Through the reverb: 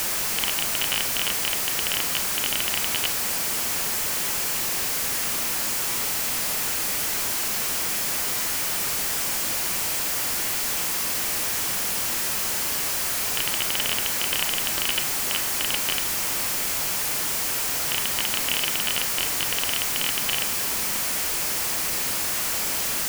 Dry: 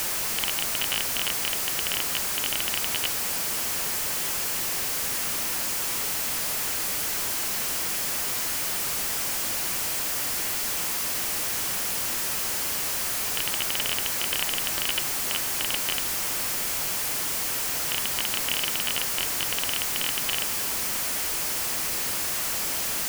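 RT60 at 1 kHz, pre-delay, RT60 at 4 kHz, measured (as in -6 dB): 0.40 s, 29 ms, 0.55 s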